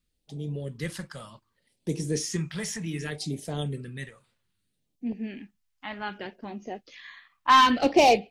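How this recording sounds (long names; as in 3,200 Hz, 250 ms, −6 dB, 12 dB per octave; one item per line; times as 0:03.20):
phaser sweep stages 2, 0.65 Hz, lowest notch 360–1,400 Hz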